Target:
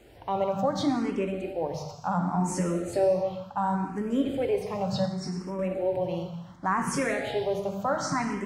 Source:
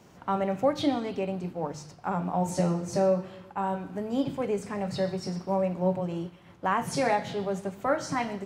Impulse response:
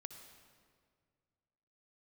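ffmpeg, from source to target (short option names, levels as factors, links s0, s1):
-filter_complex "[0:a]asplit=2[s0][s1];[s1]alimiter=limit=0.075:level=0:latency=1,volume=1.12[s2];[s0][s2]amix=inputs=2:normalize=0,aeval=exprs='val(0)+0.00158*(sin(2*PI*50*n/s)+sin(2*PI*2*50*n/s)/2+sin(2*PI*3*50*n/s)/3+sin(2*PI*4*50*n/s)/4+sin(2*PI*5*50*n/s)/5)':c=same[s3];[1:a]atrim=start_sample=2205,afade=t=out:st=0.34:d=0.01,atrim=end_sample=15435[s4];[s3][s4]afir=irnorm=-1:irlink=0,asettb=1/sr,asplit=3[s5][s6][s7];[s5]atrim=end=5.054[s8];[s6]atrim=start=5.05:end=5.59,asetpts=PTS-STARTPTS,afade=t=in:d=0.004:c=qsin,afade=t=out:st=0.536:d=0.004:c=qsin,acompressor=threshold=0.0224:ratio=2[s9];[s7]atrim=start=5.586[s10];[s8][s9]acrossfade=d=0.004:c1=hsin:c2=qsin[s11];[s11][s10]acrossfade=d=0.004:c1=qsin:c2=hsin,asplit=2[s12][s13];[s13]afreqshift=0.69[s14];[s12][s14]amix=inputs=2:normalize=1,volume=1.5"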